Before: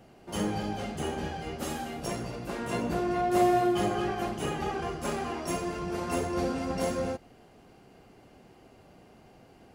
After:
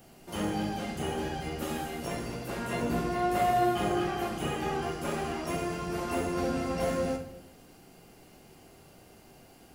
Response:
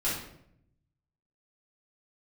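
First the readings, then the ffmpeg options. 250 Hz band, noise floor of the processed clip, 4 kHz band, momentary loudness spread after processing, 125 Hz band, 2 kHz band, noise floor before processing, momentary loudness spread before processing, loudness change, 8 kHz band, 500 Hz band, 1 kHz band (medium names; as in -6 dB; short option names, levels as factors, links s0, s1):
-1.0 dB, -55 dBFS, +0.5 dB, 9 LU, 0.0 dB, +1.0 dB, -56 dBFS, 10 LU, -0.5 dB, -1.5 dB, -1.0 dB, 0.0 dB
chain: -filter_complex "[0:a]acrossover=split=3300[s0][s1];[s1]acompressor=threshold=0.00141:ratio=4:attack=1:release=60[s2];[s0][s2]amix=inputs=2:normalize=0,aemphasis=mode=production:type=75kf,asplit=2[s3][s4];[1:a]atrim=start_sample=2205,adelay=13[s5];[s4][s5]afir=irnorm=-1:irlink=0,volume=0.266[s6];[s3][s6]amix=inputs=2:normalize=0,volume=0.75"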